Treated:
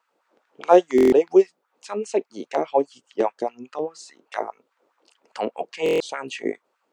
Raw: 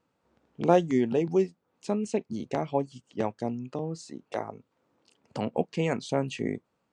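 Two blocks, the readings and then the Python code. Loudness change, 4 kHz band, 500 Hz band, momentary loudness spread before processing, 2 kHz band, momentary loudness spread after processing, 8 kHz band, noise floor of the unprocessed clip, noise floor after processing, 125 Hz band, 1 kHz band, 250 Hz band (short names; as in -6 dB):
+7.0 dB, +5.5 dB, +8.5 dB, 13 LU, +6.0 dB, 16 LU, +4.5 dB, -77 dBFS, -74 dBFS, -11.5 dB, +7.0 dB, +3.5 dB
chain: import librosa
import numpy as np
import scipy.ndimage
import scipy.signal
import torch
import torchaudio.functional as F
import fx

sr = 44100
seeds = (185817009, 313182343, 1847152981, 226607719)

y = fx.filter_lfo_highpass(x, sr, shape='sine', hz=4.9, low_hz=350.0, high_hz=1600.0, q=2.1)
y = fx.buffer_glitch(y, sr, at_s=(0.96, 5.84), block=1024, repeats=6)
y = y * librosa.db_to_amplitude(4.0)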